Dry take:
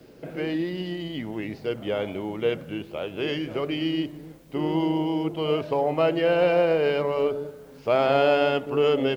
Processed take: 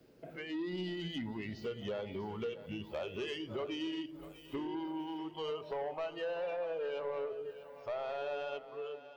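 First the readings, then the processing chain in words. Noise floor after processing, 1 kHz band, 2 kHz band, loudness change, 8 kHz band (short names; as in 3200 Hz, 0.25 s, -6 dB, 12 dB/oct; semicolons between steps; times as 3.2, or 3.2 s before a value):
-54 dBFS, -15.0 dB, -14.5 dB, -14.5 dB, n/a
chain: ending faded out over 3.01 s; compressor 10:1, threshold -32 dBFS, peak gain reduction 15 dB; spectral noise reduction 14 dB; soft clip -33 dBFS, distortion -16 dB; on a send: split-band echo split 490 Hz, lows 0.103 s, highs 0.643 s, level -13.5 dB; on the sum: gain +1 dB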